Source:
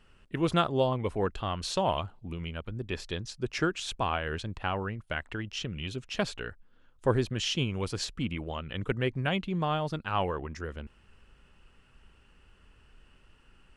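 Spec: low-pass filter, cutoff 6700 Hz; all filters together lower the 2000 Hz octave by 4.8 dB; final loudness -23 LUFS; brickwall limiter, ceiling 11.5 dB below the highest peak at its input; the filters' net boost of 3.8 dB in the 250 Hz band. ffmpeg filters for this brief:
-af "lowpass=6.7k,equalizer=f=250:t=o:g=5.5,equalizer=f=2k:t=o:g=-7,volume=11.5dB,alimiter=limit=-11dB:level=0:latency=1"

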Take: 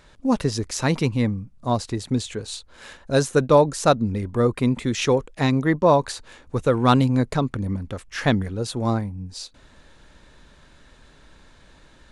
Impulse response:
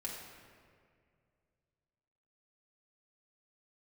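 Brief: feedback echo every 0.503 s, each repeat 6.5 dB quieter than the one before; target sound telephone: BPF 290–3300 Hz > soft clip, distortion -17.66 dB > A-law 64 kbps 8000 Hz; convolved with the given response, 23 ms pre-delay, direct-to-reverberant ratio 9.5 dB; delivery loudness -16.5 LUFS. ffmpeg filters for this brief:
-filter_complex "[0:a]aecho=1:1:503|1006|1509|2012|2515|3018:0.473|0.222|0.105|0.0491|0.0231|0.0109,asplit=2[a][b];[1:a]atrim=start_sample=2205,adelay=23[c];[b][c]afir=irnorm=-1:irlink=0,volume=-9.5dB[d];[a][d]amix=inputs=2:normalize=0,highpass=290,lowpass=3.3k,asoftclip=threshold=-8.5dB,volume=8dB" -ar 8000 -c:a pcm_alaw

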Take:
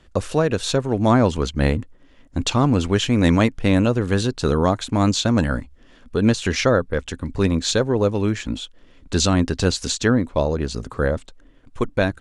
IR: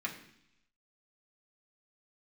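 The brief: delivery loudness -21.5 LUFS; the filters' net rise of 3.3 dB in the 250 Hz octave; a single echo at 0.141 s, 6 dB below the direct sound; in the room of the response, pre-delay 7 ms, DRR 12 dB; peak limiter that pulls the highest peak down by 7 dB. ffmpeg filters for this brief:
-filter_complex "[0:a]equalizer=f=250:t=o:g=4,alimiter=limit=-8dB:level=0:latency=1,aecho=1:1:141:0.501,asplit=2[a][b];[1:a]atrim=start_sample=2205,adelay=7[c];[b][c]afir=irnorm=-1:irlink=0,volume=-15dB[d];[a][d]amix=inputs=2:normalize=0,volume=-2dB"

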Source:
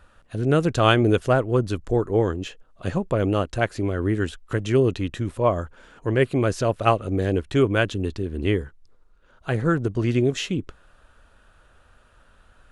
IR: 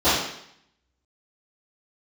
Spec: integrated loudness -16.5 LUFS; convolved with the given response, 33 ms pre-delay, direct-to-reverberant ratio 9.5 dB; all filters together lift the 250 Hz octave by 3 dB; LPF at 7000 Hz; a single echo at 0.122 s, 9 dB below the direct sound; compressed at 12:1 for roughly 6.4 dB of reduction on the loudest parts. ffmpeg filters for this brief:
-filter_complex "[0:a]lowpass=7k,equalizer=f=250:t=o:g=4,acompressor=threshold=-18dB:ratio=12,aecho=1:1:122:0.355,asplit=2[a][b];[1:a]atrim=start_sample=2205,adelay=33[c];[b][c]afir=irnorm=-1:irlink=0,volume=-30.5dB[d];[a][d]amix=inputs=2:normalize=0,volume=8dB"

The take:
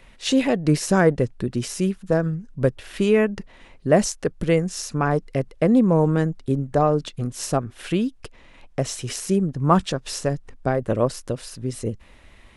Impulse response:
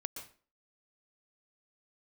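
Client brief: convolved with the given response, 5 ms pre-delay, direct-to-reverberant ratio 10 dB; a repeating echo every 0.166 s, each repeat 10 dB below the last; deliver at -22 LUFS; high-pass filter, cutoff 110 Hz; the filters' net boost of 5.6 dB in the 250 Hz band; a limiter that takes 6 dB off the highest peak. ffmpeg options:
-filter_complex "[0:a]highpass=110,equalizer=f=250:t=o:g=7.5,alimiter=limit=-8dB:level=0:latency=1,aecho=1:1:166|332|498|664:0.316|0.101|0.0324|0.0104,asplit=2[a][b];[1:a]atrim=start_sample=2205,adelay=5[c];[b][c]afir=irnorm=-1:irlink=0,volume=-9dB[d];[a][d]amix=inputs=2:normalize=0,volume=-2dB"

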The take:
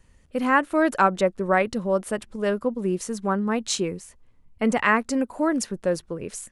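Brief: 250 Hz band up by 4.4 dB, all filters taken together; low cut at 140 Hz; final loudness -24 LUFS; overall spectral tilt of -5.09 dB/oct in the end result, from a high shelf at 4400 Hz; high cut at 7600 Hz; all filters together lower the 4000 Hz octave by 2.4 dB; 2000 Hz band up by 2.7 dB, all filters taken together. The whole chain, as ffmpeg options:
-af "highpass=140,lowpass=7.6k,equalizer=f=250:t=o:g=6,equalizer=f=2k:t=o:g=3.5,equalizer=f=4k:t=o:g=-9,highshelf=f=4.4k:g=8.5,volume=-2.5dB"

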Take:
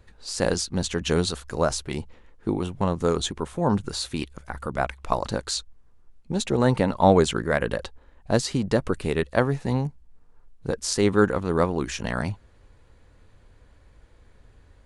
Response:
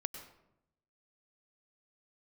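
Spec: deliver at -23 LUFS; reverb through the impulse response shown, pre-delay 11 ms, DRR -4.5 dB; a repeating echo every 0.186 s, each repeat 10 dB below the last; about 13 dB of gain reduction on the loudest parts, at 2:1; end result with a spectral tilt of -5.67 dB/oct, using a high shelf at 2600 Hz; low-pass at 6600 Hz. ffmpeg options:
-filter_complex "[0:a]lowpass=6.6k,highshelf=f=2.6k:g=-7,acompressor=threshold=-37dB:ratio=2,aecho=1:1:186|372|558|744:0.316|0.101|0.0324|0.0104,asplit=2[a][b];[1:a]atrim=start_sample=2205,adelay=11[c];[b][c]afir=irnorm=-1:irlink=0,volume=5dB[d];[a][d]amix=inputs=2:normalize=0,volume=7dB"

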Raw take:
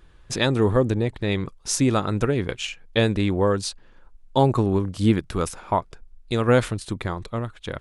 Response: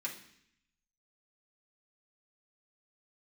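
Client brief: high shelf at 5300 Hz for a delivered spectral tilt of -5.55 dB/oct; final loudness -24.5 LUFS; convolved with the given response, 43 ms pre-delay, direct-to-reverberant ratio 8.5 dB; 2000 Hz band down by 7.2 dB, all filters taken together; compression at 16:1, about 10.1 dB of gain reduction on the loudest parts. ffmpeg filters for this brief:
-filter_complex "[0:a]equalizer=f=2k:t=o:g=-9,highshelf=f=5.3k:g=-4.5,acompressor=threshold=-23dB:ratio=16,asplit=2[a][b];[1:a]atrim=start_sample=2205,adelay=43[c];[b][c]afir=irnorm=-1:irlink=0,volume=-9.5dB[d];[a][d]amix=inputs=2:normalize=0,volume=5.5dB"

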